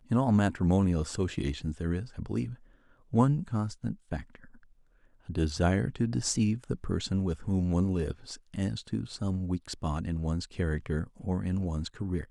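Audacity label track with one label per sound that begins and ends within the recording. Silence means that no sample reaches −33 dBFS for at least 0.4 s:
3.140000	4.350000	sound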